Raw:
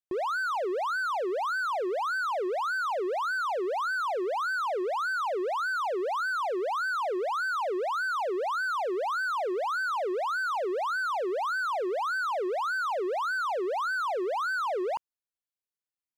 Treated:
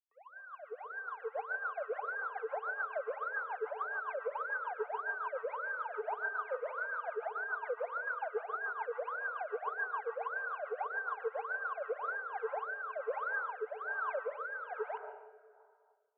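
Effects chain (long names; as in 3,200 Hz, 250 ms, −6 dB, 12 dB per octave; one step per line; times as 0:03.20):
fade in at the beginning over 3.98 s
brickwall limiter −32.5 dBFS, peak gain reduction 7.5 dB
auto-filter high-pass sine 9.3 Hz 340–1,900 Hz
single-sideband voice off tune +71 Hz 170–2,400 Hz
0:05.93–0:07.08: double-tracking delay 47 ms −13 dB
dense smooth reverb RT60 1.9 s, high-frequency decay 0.5×, pre-delay 115 ms, DRR 9 dB
rotating-speaker cabinet horn 7 Hz, later 1.2 Hz, at 0:11.54
level −1.5 dB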